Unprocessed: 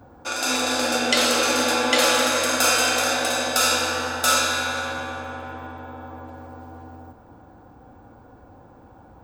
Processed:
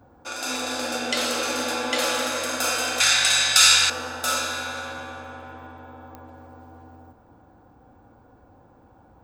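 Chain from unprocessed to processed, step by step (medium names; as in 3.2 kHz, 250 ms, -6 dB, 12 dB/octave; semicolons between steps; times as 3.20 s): 3.00–3.90 s: graphic EQ 125/250/500/2000/4000/8000 Hz +11/-11/-7/+11/+10/+11 dB; clicks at 6.15 s, -20 dBFS; trim -5.5 dB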